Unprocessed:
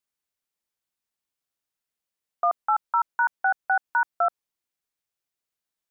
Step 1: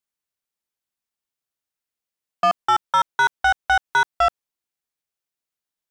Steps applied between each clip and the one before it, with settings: waveshaping leveller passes 2; trim +2.5 dB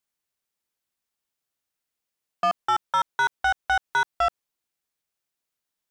peak limiter -19.5 dBFS, peak gain reduction 8 dB; trim +3 dB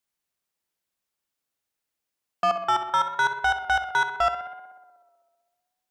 tape echo 63 ms, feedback 82%, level -7 dB, low-pass 2.3 kHz

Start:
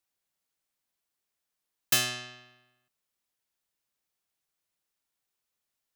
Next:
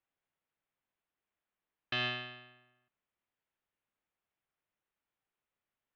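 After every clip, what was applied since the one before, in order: level-controlled noise filter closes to 2.6 kHz; steep low-pass 3.6 kHz 36 dB/octave; peak limiter -23.5 dBFS, peak gain reduction 7 dB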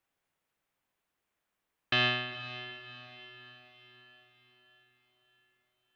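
echo that smears into a reverb 456 ms, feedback 50%, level -13.5 dB; trim +7 dB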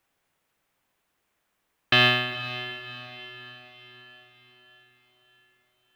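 modulation noise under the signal 33 dB; trim +8.5 dB

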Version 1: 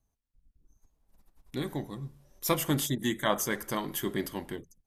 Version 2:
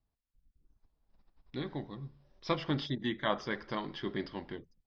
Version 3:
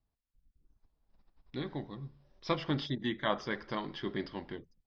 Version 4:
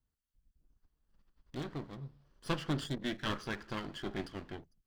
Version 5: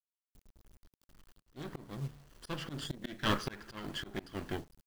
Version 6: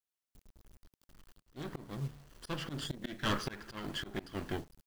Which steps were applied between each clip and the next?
Chebyshev low-pass 5.2 kHz, order 6; trim -3.5 dB
no audible change
comb filter that takes the minimum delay 0.66 ms; trim -1 dB
companded quantiser 6-bit; slow attack 284 ms; trim +7 dB
saturation -26.5 dBFS, distortion -13 dB; trim +1.5 dB

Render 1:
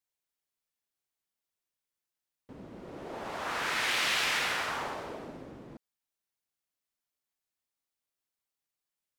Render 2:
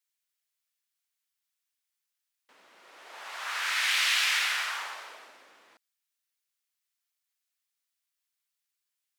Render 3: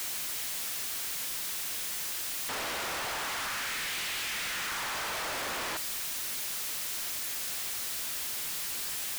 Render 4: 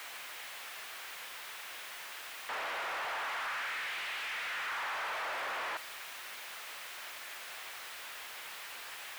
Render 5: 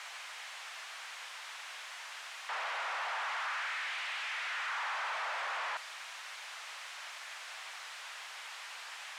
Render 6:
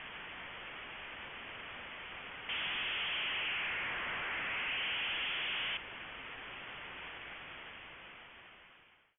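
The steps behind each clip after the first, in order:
high-pass 1.5 kHz 12 dB/octave; trim +4.5 dB
one-bit comparator; trim +2 dB
three-band isolator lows -18 dB, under 500 Hz, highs -16 dB, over 3 kHz
Chebyshev band-pass 770–7200 Hz, order 2; trim +1 dB
fade out at the end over 2.04 s; frequency inversion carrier 4 kHz

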